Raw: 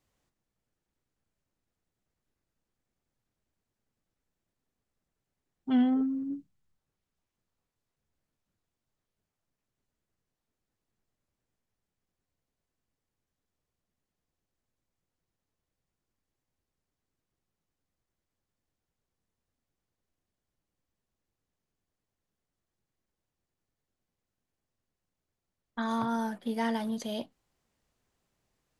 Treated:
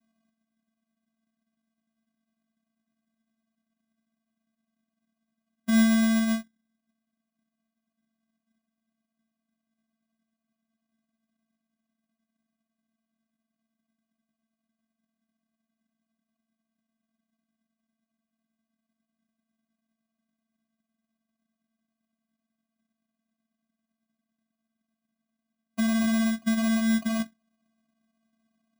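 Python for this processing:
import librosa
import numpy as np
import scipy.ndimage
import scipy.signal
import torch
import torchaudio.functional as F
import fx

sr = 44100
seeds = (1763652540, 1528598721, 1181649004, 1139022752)

p1 = fx.over_compress(x, sr, threshold_db=-32.0, ratio=-1.0)
p2 = x + (p1 * librosa.db_to_amplitude(0.5))
p3 = fx.vocoder(p2, sr, bands=4, carrier='square', carrier_hz=223.0)
p4 = fx.sample_hold(p3, sr, seeds[0], rate_hz=1800.0, jitter_pct=0)
y = p4 * librosa.db_to_amplitude(2.0)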